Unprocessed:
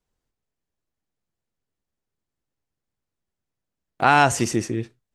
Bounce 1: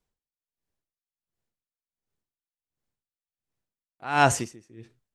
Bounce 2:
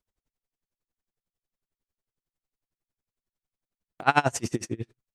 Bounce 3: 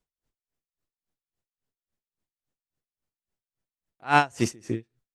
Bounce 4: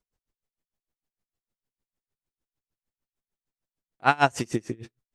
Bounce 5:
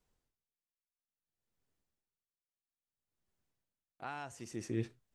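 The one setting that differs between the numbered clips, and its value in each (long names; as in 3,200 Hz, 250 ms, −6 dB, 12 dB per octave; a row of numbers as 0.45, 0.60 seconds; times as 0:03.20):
tremolo with a sine in dB, speed: 1.4, 11, 3.6, 6.6, 0.59 Hertz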